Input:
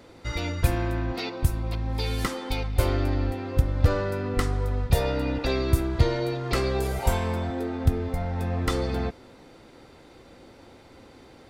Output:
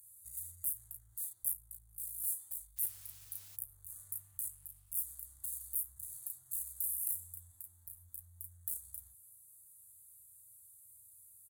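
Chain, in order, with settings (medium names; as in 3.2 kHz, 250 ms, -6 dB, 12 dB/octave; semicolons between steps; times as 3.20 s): valve stage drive 35 dB, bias 0.35; inverse Chebyshev band-stop 210–5600 Hz, stop band 40 dB; doubling 34 ms -2 dB; gain riding 2 s; 2.76–3.55 s: added noise pink -66 dBFS; peak limiter -32.5 dBFS, peak gain reduction 9 dB; differentiator; repeats whose band climbs or falls 277 ms, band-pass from 350 Hz, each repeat 0.7 oct, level -7 dB; trim +14.5 dB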